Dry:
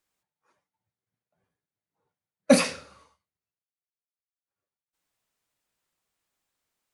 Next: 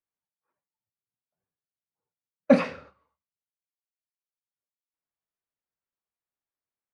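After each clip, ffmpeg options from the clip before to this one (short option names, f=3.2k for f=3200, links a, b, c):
-af "lowpass=2k,agate=range=-13dB:threshold=-50dB:ratio=16:detection=peak"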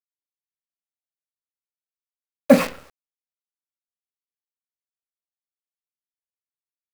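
-af "acrusher=bits=6:dc=4:mix=0:aa=0.000001,volume=5dB"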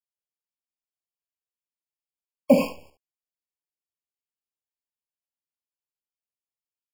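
-af "aecho=1:1:57|71:0.224|0.237,afftfilt=real='re*eq(mod(floor(b*sr/1024/1100),2),0)':imag='im*eq(mod(floor(b*sr/1024/1100),2),0)':win_size=1024:overlap=0.75,volume=-4dB"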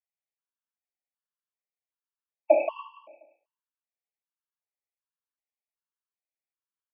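-af "highpass=f=430:t=q:w=0.5412,highpass=f=430:t=q:w=1.307,lowpass=f=2.5k:t=q:w=0.5176,lowpass=f=2.5k:t=q:w=0.7071,lowpass=f=2.5k:t=q:w=1.932,afreqshift=56,aecho=1:1:177|354|531|708:0.631|0.177|0.0495|0.0139,afftfilt=real='re*gt(sin(2*PI*1.3*pts/sr)*(1-2*mod(floor(b*sr/1024/890),2)),0)':imag='im*gt(sin(2*PI*1.3*pts/sr)*(1-2*mod(floor(b*sr/1024/890),2)),0)':win_size=1024:overlap=0.75"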